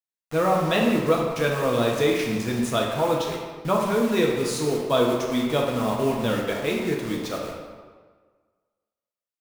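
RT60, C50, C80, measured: 1.5 s, 2.0 dB, 4.0 dB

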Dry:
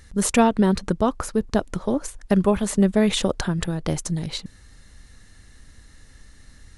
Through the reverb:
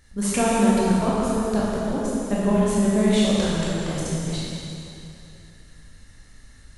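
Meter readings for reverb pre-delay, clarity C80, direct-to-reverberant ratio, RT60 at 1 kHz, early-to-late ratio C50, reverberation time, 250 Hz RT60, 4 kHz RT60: 8 ms, -2.0 dB, -7.5 dB, 2.8 s, -4.0 dB, 2.8 s, 2.8 s, 2.6 s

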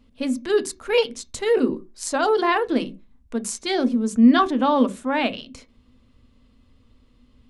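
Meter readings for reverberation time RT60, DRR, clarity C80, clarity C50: not exponential, 11.0 dB, 27.5 dB, 20.5 dB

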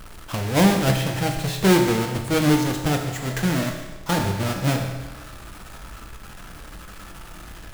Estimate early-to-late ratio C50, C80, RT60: 5.5 dB, 7.0 dB, 1.2 s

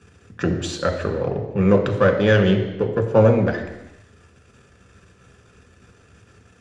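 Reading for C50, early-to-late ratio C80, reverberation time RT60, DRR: 8.0 dB, 9.5 dB, 1.1 s, 3.0 dB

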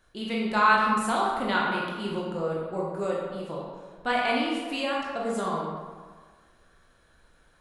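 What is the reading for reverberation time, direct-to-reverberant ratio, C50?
1.6 s, -4.5 dB, 0.0 dB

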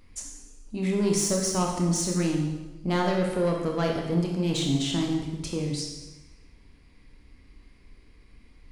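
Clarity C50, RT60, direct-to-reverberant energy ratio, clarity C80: 3.0 dB, 1.1 s, 0.0 dB, 6.0 dB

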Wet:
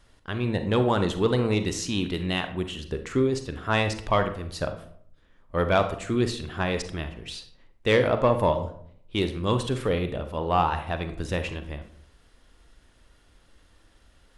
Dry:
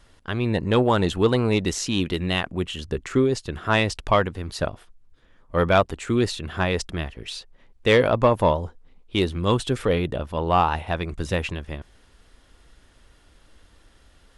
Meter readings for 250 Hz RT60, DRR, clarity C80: 0.75 s, 8.0 dB, 14.0 dB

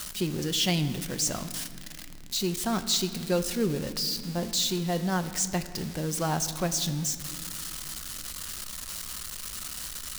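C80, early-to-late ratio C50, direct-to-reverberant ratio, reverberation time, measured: 12.5 dB, 11.5 dB, 8.0 dB, 2.3 s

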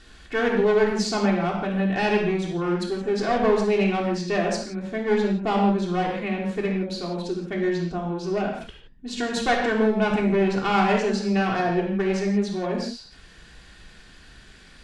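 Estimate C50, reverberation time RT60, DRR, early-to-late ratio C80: 3.0 dB, not exponential, -2.5 dB, 5.5 dB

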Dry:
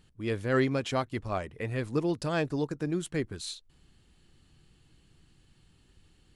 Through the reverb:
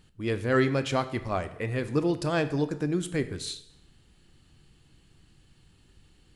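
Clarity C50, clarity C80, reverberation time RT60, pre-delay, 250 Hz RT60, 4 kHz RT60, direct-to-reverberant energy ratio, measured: 14.0 dB, 16.0 dB, 0.85 s, 18 ms, 0.80 s, 0.70 s, 11.0 dB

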